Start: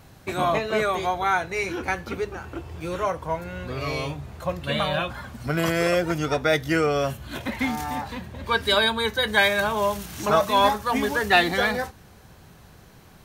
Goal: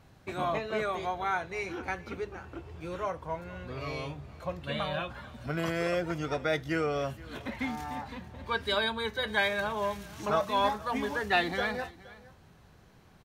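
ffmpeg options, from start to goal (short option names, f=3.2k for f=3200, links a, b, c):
-af "highshelf=f=7.8k:g=-11,aecho=1:1:470:0.0944,volume=-8dB"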